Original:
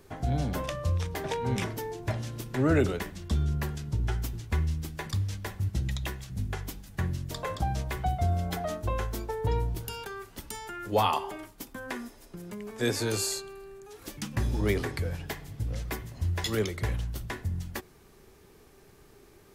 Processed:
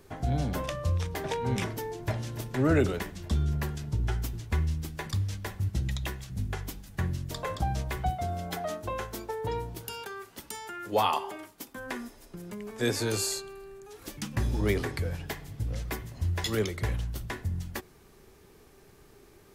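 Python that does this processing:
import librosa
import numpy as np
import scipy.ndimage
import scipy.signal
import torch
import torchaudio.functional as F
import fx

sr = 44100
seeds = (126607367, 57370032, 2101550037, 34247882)

y = fx.echo_throw(x, sr, start_s=1.7, length_s=0.48, ms=290, feedback_pct=75, wet_db=-14.0)
y = fx.highpass(y, sr, hz=220.0, slope=6, at=(8.1, 11.77))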